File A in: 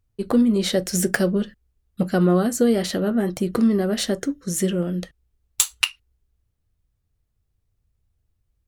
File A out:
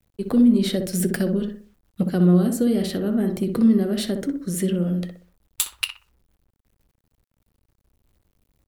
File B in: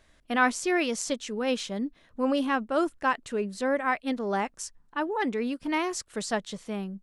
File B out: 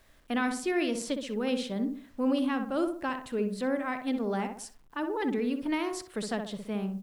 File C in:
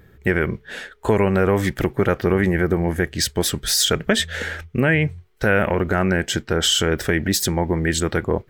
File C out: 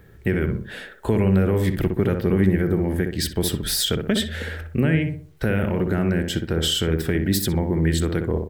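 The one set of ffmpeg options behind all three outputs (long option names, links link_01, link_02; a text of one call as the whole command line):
ffmpeg -i in.wav -filter_complex "[0:a]equalizer=frequency=6400:width=1.8:gain=-10,asplit=2[link_01][link_02];[link_02]adelay=62,lowpass=frequency=1300:poles=1,volume=-5dB,asplit=2[link_03][link_04];[link_04]adelay=62,lowpass=frequency=1300:poles=1,volume=0.38,asplit=2[link_05][link_06];[link_06]adelay=62,lowpass=frequency=1300:poles=1,volume=0.38,asplit=2[link_07][link_08];[link_08]adelay=62,lowpass=frequency=1300:poles=1,volume=0.38,asplit=2[link_09][link_10];[link_10]adelay=62,lowpass=frequency=1300:poles=1,volume=0.38[link_11];[link_01][link_03][link_05][link_07][link_09][link_11]amix=inputs=6:normalize=0,acrusher=bits=10:mix=0:aa=0.000001,acrossover=split=390|3000[link_12][link_13][link_14];[link_13]acompressor=threshold=-39dB:ratio=2[link_15];[link_12][link_15][link_14]amix=inputs=3:normalize=0" out.wav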